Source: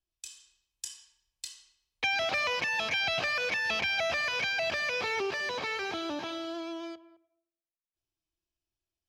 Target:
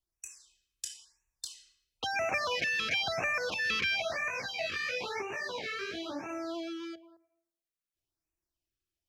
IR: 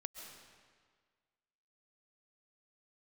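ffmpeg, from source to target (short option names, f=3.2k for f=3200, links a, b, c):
-filter_complex "[0:a]asplit=3[a][b][c];[a]afade=t=out:st=3.97:d=0.02[d];[b]flanger=delay=15.5:depth=6.5:speed=2,afade=t=in:st=3.97:d=0.02,afade=t=out:st=6.28:d=0.02[e];[c]afade=t=in:st=6.28:d=0.02[f];[d][e][f]amix=inputs=3:normalize=0,afftfilt=real='re*(1-between(b*sr/1024,720*pow(4100/720,0.5+0.5*sin(2*PI*0.99*pts/sr))/1.41,720*pow(4100/720,0.5+0.5*sin(2*PI*0.99*pts/sr))*1.41))':imag='im*(1-between(b*sr/1024,720*pow(4100/720,0.5+0.5*sin(2*PI*0.99*pts/sr))/1.41,720*pow(4100/720,0.5+0.5*sin(2*PI*0.99*pts/sr))*1.41))':win_size=1024:overlap=0.75"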